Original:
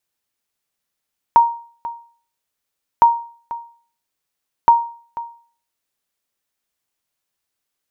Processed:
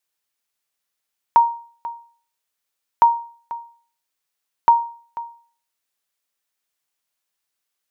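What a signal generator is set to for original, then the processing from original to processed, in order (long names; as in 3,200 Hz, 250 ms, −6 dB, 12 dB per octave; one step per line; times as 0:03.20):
ping with an echo 935 Hz, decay 0.45 s, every 1.66 s, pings 3, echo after 0.49 s, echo −17 dB −3 dBFS
low-shelf EQ 460 Hz −8.5 dB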